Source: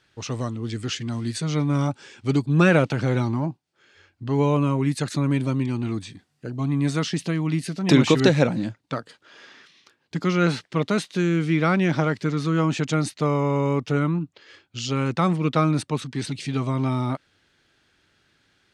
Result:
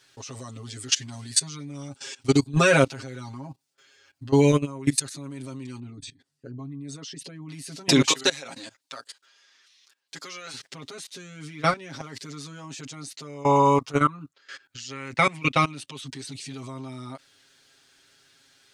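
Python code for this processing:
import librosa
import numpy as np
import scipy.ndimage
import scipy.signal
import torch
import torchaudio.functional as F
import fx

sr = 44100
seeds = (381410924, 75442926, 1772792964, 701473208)

y = fx.comb(x, sr, ms=7.4, depth=0.48, at=(0.55, 5.07))
y = fx.envelope_sharpen(y, sr, power=1.5, at=(5.79, 7.49))
y = fx.highpass(y, sr, hz=1100.0, slope=6, at=(8.09, 10.54))
y = fx.high_shelf(y, sr, hz=3900.0, db=3.5, at=(11.96, 12.85))
y = fx.peak_eq(y, sr, hz=fx.line((13.44, 860.0), (16.05, 3300.0)), db=14.5, octaves=0.52, at=(13.44, 16.05), fade=0.02)
y = fx.bass_treble(y, sr, bass_db=-7, treble_db=12)
y = fx.level_steps(y, sr, step_db=21)
y = y + 0.97 * np.pad(y, (int(7.4 * sr / 1000.0), 0))[:len(y)]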